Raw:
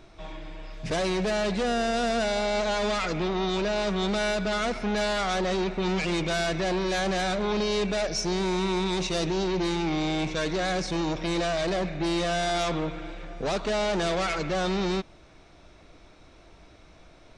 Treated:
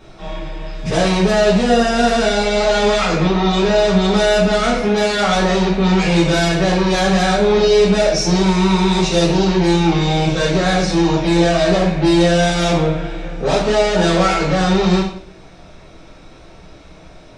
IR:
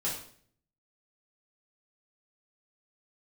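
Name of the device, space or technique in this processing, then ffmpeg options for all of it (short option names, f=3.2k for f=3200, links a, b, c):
bathroom: -filter_complex "[0:a]asettb=1/sr,asplit=3[a][b][c];[a]atrim=end=4.814[d];[b]atrim=start=4.81:end=5.27,asetpts=PTS-STARTPTS,afade=t=in:d=0.004:c=qsin,afade=t=out:st=0.456:d=0.004:c=qsin,highpass=57[e];[c]atrim=start=5.266[f];[d][e]acrossfade=d=0.004:c1=hsin:c2=qsin[g];[g][f]acrossfade=d=0.004:c1=qsin:c2=hsin[h];[1:a]atrim=start_sample=2205[i];[h][i]afir=irnorm=-1:irlink=0,volume=6dB"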